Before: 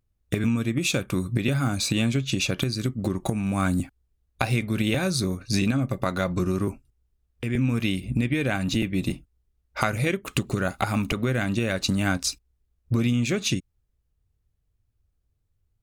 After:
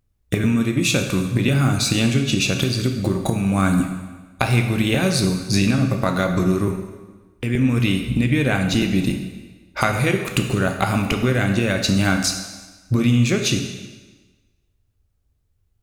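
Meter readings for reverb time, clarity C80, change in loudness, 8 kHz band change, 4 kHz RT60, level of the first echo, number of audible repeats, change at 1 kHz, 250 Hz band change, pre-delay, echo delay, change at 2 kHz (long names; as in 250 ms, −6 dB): 1.3 s, 8.0 dB, +6.0 dB, +6.0 dB, 1.2 s, no echo audible, no echo audible, +5.5 dB, +6.0 dB, 12 ms, no echo audible, +6.0 dB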